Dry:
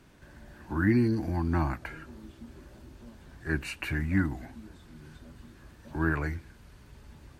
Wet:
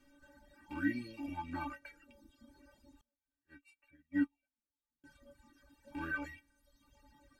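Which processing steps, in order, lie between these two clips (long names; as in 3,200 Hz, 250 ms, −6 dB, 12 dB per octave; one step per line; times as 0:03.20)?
loose part that buzzes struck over −39 dBFS, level −32 dBFS
stiff-string resonator 280 Hz, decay 0.26 s, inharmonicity 0.008
reverb reduction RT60 1.1 s
0:03.01–0:05.04: expander for the loud parts 2.5 to 1, over −55 dBFS
level +6 dB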